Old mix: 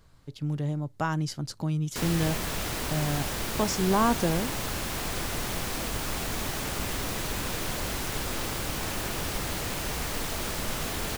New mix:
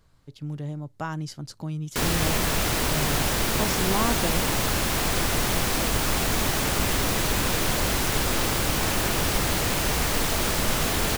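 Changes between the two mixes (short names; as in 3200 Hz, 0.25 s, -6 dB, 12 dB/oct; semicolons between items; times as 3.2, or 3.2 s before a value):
speech -3.0 dB; background +7.5 dB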